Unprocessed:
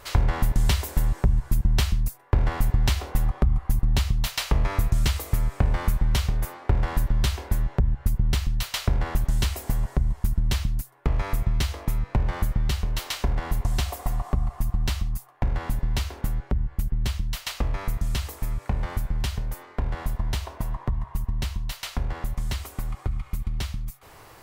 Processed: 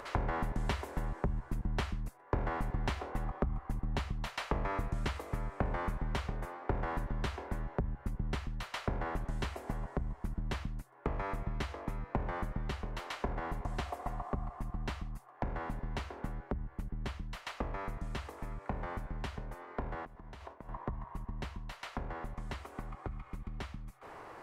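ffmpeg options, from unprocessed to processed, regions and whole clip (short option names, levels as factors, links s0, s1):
-filter_complex "[0:a]asettb=1/sr,asplit=3[s0][s1][s2];[s0]atrim=end=20.054[s3];[s1]atrim=start=20.05:end=20.69,asetpts=PTS-STARTPTS,afade=t=in:d=0.004:c=qsin,afade=t=out:st=0.636:d=0.004:c=qsin,agate=range=0.0224:threshold=0.0178:ratio=3:release=100:detection=peak,acompressor=threshold=0.0141:ratio=10:attack=3.2:release=140:knee=1:detection=peak[s4];[s2]atrim=start=20.686[s5];[s3][s4]acrossfade=d=0.004:c1=hsin:c2=qsin[s6];[s6][s5]acrossfade=d=0.004:c1=qsin:c2=hsin,lowpass=10000,acrossover=split=200 2100:gain=0.251 1 0.178[s7][s8][s9];[s7][s8][s9]amix=inputs=3:normalize=0,acompressor=mode=upward:threshold=0.0126:ratio=2.5,volume=0.668"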